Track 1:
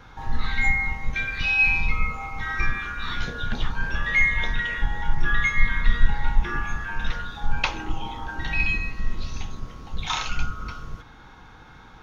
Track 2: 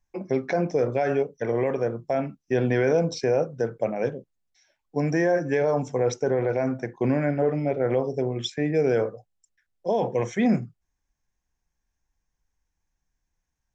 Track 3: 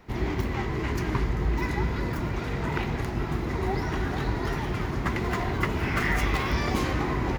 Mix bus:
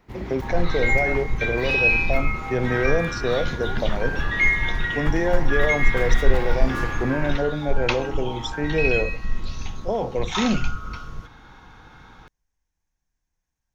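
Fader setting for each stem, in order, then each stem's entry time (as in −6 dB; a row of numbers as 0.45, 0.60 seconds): +0.5, −1.0, −6.0 decibels; 0.25, 0.00, 0.00 seconds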